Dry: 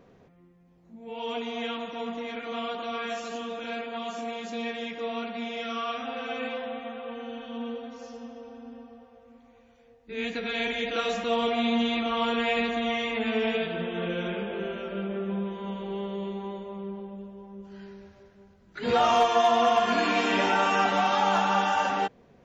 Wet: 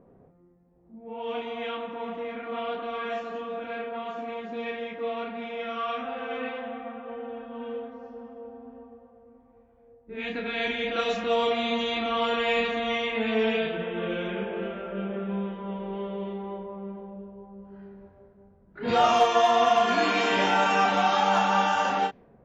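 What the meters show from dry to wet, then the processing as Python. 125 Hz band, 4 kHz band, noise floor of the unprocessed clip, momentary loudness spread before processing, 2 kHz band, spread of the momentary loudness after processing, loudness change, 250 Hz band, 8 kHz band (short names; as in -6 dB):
0.0 dB, +0.5 dB, -58 dBFS, 19 LU, +1.0 dB, 18 LU, +1.0 dB, -1.5 dB, n/a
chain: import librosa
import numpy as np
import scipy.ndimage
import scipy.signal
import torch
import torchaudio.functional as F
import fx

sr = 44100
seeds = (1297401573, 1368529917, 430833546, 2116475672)

y = fx.env_lowpass(x, sr, base_hz=850.0, full_db=-20.5)
y = fx.doubler(y, sr, ms=32.0, db=-5.0)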